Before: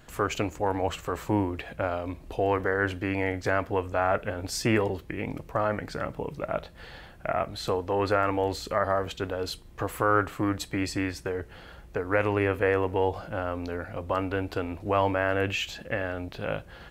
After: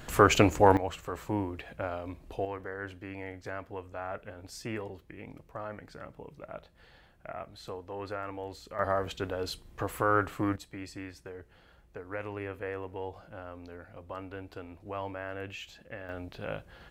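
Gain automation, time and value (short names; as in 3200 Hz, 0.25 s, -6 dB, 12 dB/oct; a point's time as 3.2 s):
+7 dB
from 0.77 s -6 dB
from 2.45 s -13 dB
from 8.79 s -3 dB
from 10.56 s -13 dB
from 16.09 s -6 dB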